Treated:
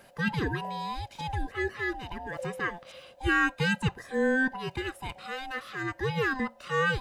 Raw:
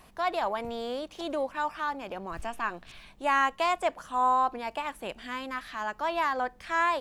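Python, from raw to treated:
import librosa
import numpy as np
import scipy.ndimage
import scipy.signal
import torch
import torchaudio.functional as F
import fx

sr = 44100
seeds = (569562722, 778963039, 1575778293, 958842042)

y = fx.band_swap(x, sr, width_hz=500)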